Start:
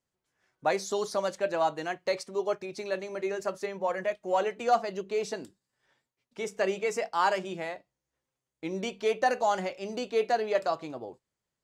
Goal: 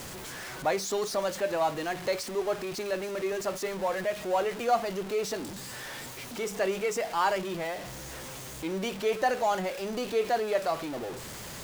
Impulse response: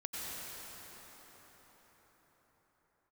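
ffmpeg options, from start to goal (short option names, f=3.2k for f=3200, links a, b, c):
-af "aeval=exprs='val(0)+0.5*0.0251*sgn(val(0))':c=same,volume=-2dB"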